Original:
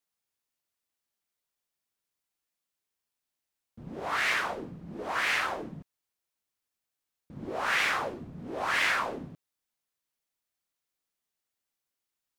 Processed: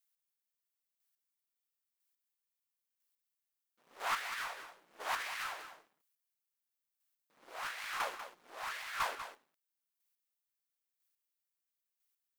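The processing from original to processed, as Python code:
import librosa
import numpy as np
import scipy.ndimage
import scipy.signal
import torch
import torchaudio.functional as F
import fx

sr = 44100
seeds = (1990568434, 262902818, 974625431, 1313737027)

y = np.where(x < 0.0, 10.0 ** (-12.0 / 20.0) * x, x)
y = scipy.signal.sosfilt(scipy.signal.butter(2, 1100.0, 'highpass', fs=sr, output='sos'), y)
y = fx.high_shelf(y, sr, hz=11000.0, db=11.0)
y = fx.over_compress(y, sr, threshold_db=-35.0, ratio=-0.5)
y = fx.leveller(y, sr, passes=1)
y = np.clip(y, -10.0 ** (-26.5 / 20.0), 10.0 ** (-26.5 / 20.0))
y = fx.chopper(y, sr, hz=1.0, depth_pct=60, duty_pct=15)
y = y + 10.0 ** (-10.5 / 20.0) * np.pad(y, (int(193 * sr / 1000.0), 0))[:len(y)]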